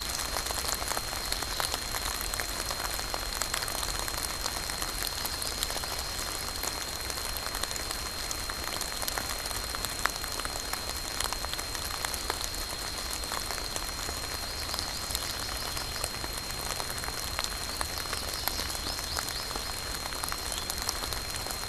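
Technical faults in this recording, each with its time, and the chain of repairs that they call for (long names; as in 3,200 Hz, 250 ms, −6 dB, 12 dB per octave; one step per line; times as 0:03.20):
whistle 4,200 Hz −39 dBFS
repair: notch filter 4,200 Hz, Q 30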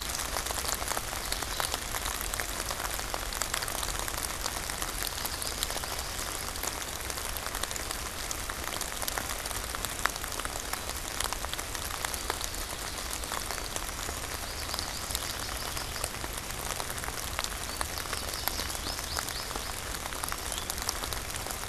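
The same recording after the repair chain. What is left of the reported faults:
none of them is left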